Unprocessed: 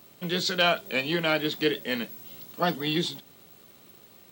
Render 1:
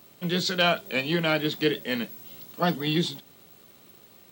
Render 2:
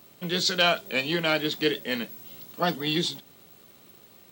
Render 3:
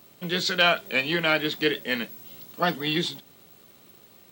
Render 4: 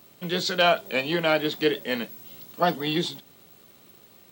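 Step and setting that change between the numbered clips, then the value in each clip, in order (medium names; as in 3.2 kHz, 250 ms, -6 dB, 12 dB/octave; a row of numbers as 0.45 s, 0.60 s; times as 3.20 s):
dynamic bell, frequency: 150 Hz, 5.8 kHz, 1.9 kHz, 690 Hz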